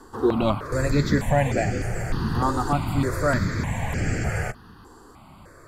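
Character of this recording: notches that jump at a steady rate 3.3 Hz 620–3700 Hz

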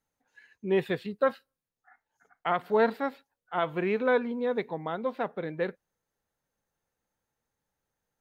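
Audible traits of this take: noise floor -90 dBFS; spectral tilt -4.5 dB/oct

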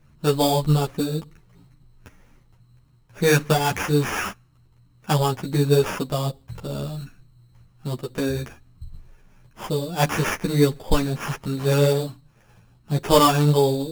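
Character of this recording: aliases and images of a low sample rate 4100 Hz, jitter 0%; a shimmering, thickened sound

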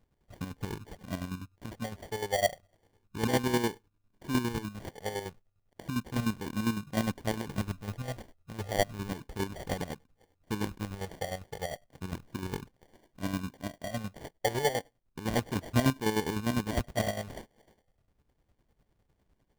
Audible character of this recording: phasing stages 4, 0.33 Hz, lowest notch 260–1200 Hz; chopped level 9.9 Hz, depth 60%, duty 40%; aliases and images of a low sample rate 1300 Hz, jitter 0%

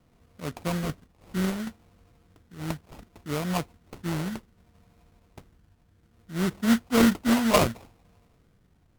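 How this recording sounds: phasing stages 12, 0.65 Hz, lowest notch 580–1900 Hz; aliases and images of a low sample rate 1700 Hz, jitter 20%; MP3

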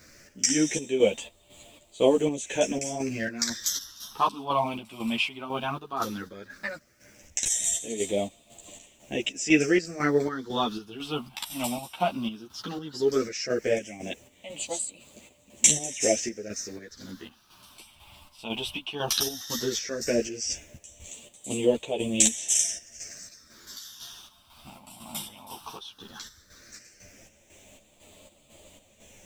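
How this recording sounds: phasing stages 6, 0.15 Hz, lowest notch 460–1500 Hz; a quantiser's noise floor 12-bit, dither triangular; chopped level 2 Hz, depth 60%, duty 55%; a shimmering, thickened sound

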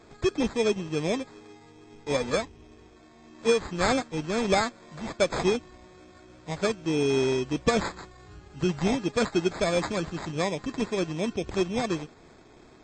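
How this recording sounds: aliases and images of a low sample rate 2900 Hz, jitter 0%; MP3

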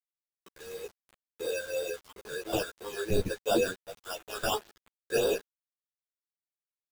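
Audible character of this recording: aliases and images of a low sample rate 2100 Hz, jitter 0%; phasing stages 8, 2.9 Hz, lowest notch 750–2100 Hz; a quantiser's noise floor 8-bit, dither none; a shimmering, thickened sound

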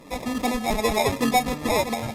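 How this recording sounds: phasing stages 4, 2.7 Hz, lowest notch 400–1200 Hz; aliases and images of a low sample rate 1500 Hz, jitter 0%; AAC

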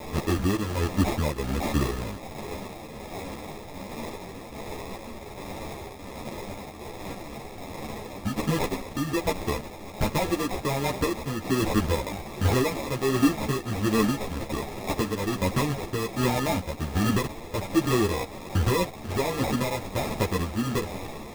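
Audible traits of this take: a quantiser's noise floor 6-bit, dither triangular; tremolo triangle 1.3 Hz, depth 55%; aliases and images of a low sample rate 1500 Hz, jitter 0%; a shimmering, thickened sound

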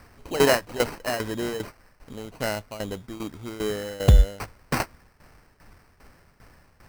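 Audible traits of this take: a quantiser's noise floor 10-bit, dither triangular; tremolo saw down 2.5 Hz, depth 80%; aliases and images of a low sample rate 3500 Hz, jitter 0%

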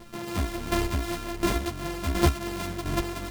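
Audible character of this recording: a buzz of ramps at a fixed pitch in blocks of 128 samples; chopped level 1.4 Hz, depth 60%, duty 20%; a shimmering, thickened sound

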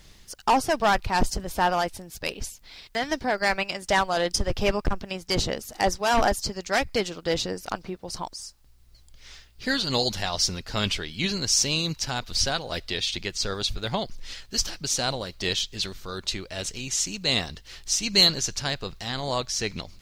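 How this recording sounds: tremolo triangle 2.6 Hz, depth 40%; a quantiser's noise floor 12-bit, dither triangular

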